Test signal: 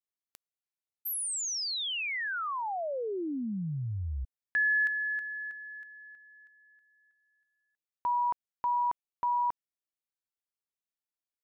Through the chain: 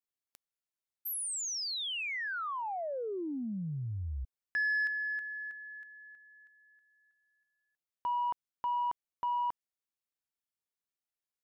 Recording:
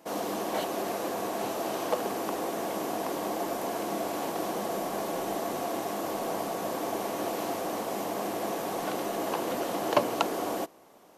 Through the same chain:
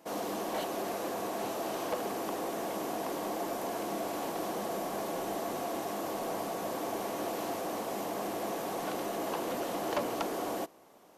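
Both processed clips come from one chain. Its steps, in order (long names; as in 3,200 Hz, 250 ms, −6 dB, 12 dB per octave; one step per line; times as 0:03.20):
soft clipping −22.5 dBFS
level −2.5 dB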